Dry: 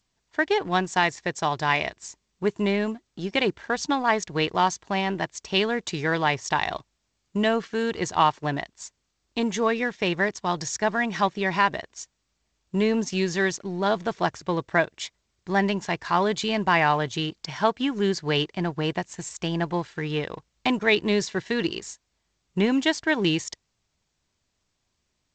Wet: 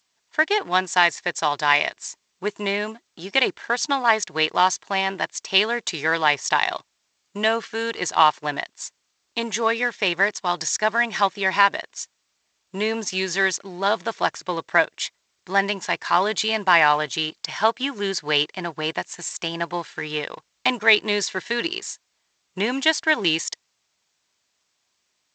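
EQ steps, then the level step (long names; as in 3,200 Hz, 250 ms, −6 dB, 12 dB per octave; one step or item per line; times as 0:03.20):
high-pass filter 930 Hz 6 dB per octave
+6.5 dB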